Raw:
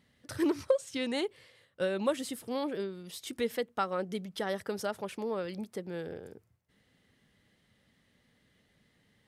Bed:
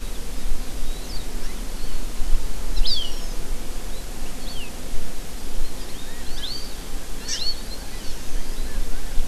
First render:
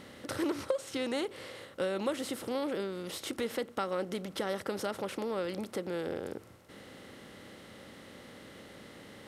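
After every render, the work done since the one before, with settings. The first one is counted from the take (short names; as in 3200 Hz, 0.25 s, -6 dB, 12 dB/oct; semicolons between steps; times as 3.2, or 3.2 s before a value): per-bin compression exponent 0.6; compressor 1.5:1, threshold -38 dBFS, peak gain reduction 7 dB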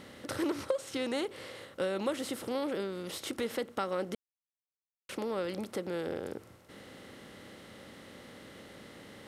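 4.15–5.09 mute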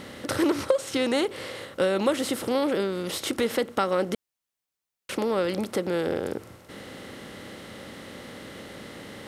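gain +9 dB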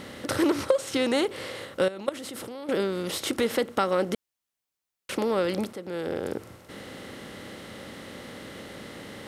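1.88–2.69 level quantiser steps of 19 dB; 5.73–6.36 fade in, from -13.5 dB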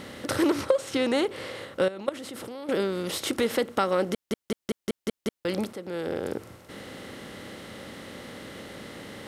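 0.61–2.45 high shelf 4400 Hz -4.5 dB; 4.12 stutter in place 0.19 s, 7 plays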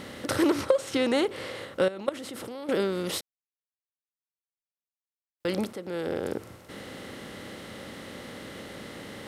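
3.21–5.4 mute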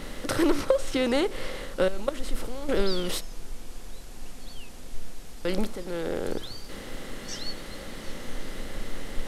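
add bed -11 dB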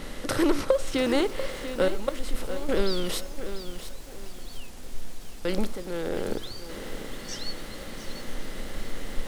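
lo-fi delay 0.692 s, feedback 35%, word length 7-bit, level -10.5 dB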